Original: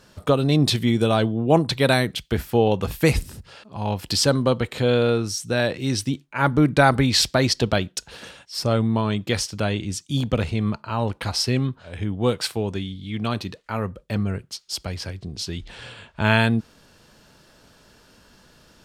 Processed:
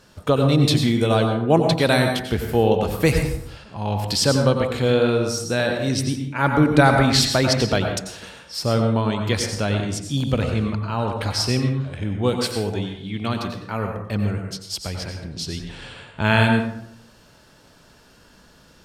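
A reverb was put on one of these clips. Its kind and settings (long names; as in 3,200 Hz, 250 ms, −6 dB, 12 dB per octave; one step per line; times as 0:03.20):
dense smooth reverb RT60 0.71 s, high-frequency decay 0.55×, pre-delay 80 ms, DRR 3.5 dB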